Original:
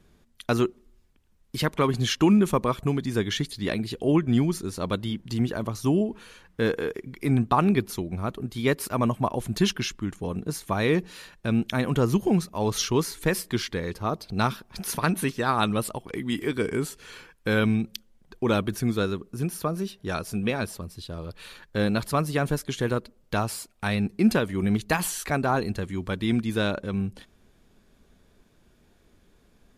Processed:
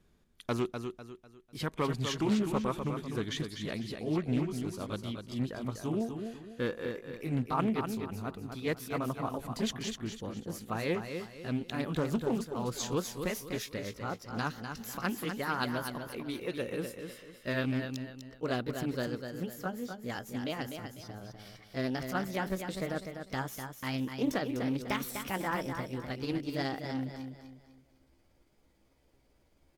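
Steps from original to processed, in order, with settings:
pitch glide at a constant tempo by +5.5 semitones starting unshifted
repeating echo 249 ms, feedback 35%, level −7 dB
highs frequency-modulated by the lows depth 0.31 ms
level −8.5 dB

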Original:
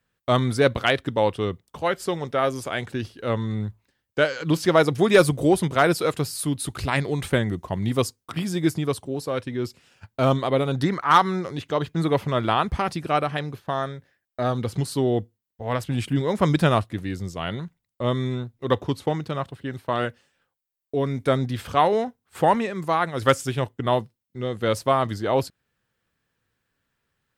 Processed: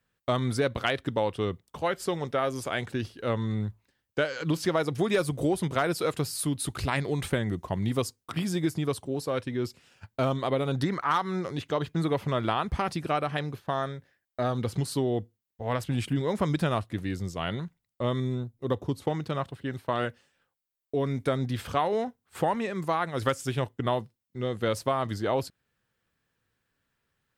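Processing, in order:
0:18.20–0:19.02: parametric band 2,100 Hz −8.5 dB 2.6 octaves
downward compressor 4 to 1, threshold −21 dBFS, peak gain reduction 9.5 dB
level −2 dB

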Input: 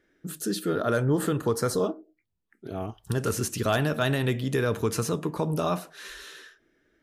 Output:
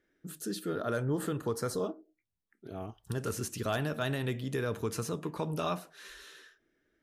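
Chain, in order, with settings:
0:05.16–0:05.73: dynamic equaliser 2,500 Hz, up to +8 dB, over −46 dBFS, Q 0.73
level −7.5 dB

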